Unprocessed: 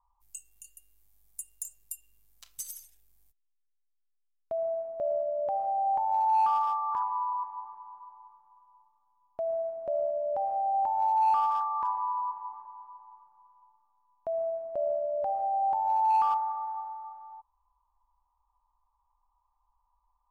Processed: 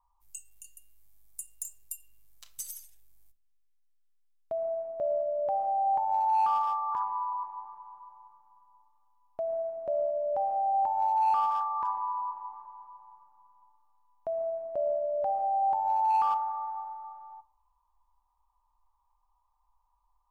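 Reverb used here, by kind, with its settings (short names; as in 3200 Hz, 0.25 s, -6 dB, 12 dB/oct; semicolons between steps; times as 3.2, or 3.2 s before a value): shoebox room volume 720 m³, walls furnished, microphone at 0.51 m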